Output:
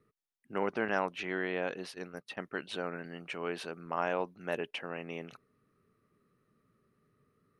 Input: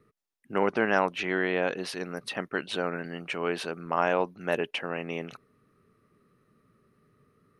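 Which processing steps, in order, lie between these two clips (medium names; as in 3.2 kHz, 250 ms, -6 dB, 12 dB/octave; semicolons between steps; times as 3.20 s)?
0.88–2.45 s: gate -35 dBFS, range -29 dB; trim -7 dB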